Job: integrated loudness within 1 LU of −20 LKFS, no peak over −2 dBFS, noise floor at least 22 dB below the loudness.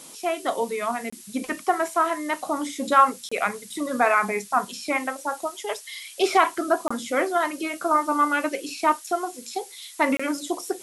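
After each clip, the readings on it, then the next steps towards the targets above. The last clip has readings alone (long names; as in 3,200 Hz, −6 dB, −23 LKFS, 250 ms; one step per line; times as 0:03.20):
number of dropouts 4; longest dropout 25 ms; background noise floor −45 dBFS; target noise floor −47 dBFS; integrated loudness −24.5 LKFS; sample peak −5.0 dBFS; target loudness −20.0 LKFS
→ repair the gap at 0:01.10/0:03.29/0:06.88/0:10.17, 25 ms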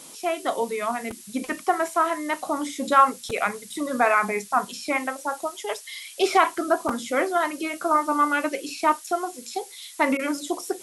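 number of dropouts 0; background noise floor −44 dBFS; target noise floor −47 dBFS
→ noise reduction from a noise print 6 dB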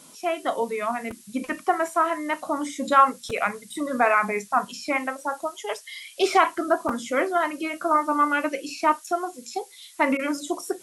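background noise floor −49 dBFS; integrated loudness −25.0 LKFS; sample peak −5.0 dBFS; target loudness −20.0 LKFS
→ level +5 dB
brickwall limiter −2 dBFS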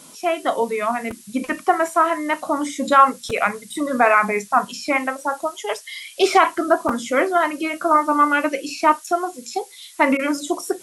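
integrated loudness −20.0 LKFS; sample peak −2.0 dBFS; background noise floor −44 dBFS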